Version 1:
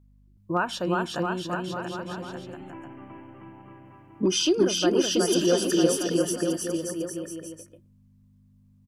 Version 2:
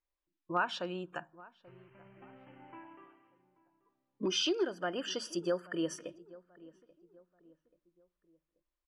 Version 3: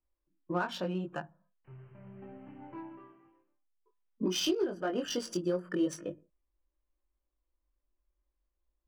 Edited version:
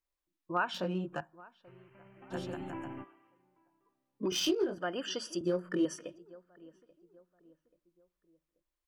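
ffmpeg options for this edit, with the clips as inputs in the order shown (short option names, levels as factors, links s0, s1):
-filter_complex "[2:a]asplit=3[s0][s1][s2];[1:a]asplit=5[s3][s4][s5][s6][s7];[s3]atrim=end=0.742[s8];[s0]atrim=start=0.738:end=1.212[s9];[s4]atrim=start=1.208:end=2.34[s10];[0:a]atrim=start=2.3:end=3.05[s11];[s5]atrim=start=3.01:end=4.322[s12];[s1]atrim=start=4.318:end=4.782[s13];[s6]atrim=start=4.778:end=5.412[s14];[s2]atrim=start=5.408:end=5.852[s15];[s7]atrim=start=5.848[s16];[s8][s9]acrossfade=d=0.004:c1=hsin:c2=hsin[s17];[s17][s10]acrossfade=d=0.004:c1=hsin:c2=hsin[s18];[s18][s11]acrossfade=d=0.04:c1=tri:c2=tri[s19];[s19][s12]acrossfade=d=0.04:c1=tri:c2=tri[s20];[s20][s13]acrossfade=d=0.004:c1=hsin:c2=hsin[s21];[s21][s14]acrossfade=d=0.004:c1=hsin:c2=hsin[s22];[s22][s15]acrossfade=d=0.004:c1=hsin:c2=hsin[s23];[s23][s16]acrossfade=d=0.004:c1=hsin:c2=hsin"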